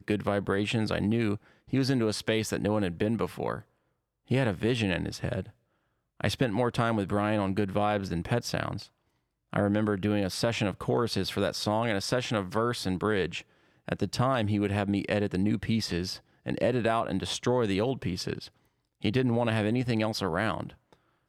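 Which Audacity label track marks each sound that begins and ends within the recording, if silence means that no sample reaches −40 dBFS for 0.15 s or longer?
1.730000	3.600000	sound
4.310000	5.490000	sound
6.200000	8.840000	sound
9.530000	13.410000	sound
13.880000	16.170000	sound
16.460000	18.480000	sound
19.030000	20.700000	sound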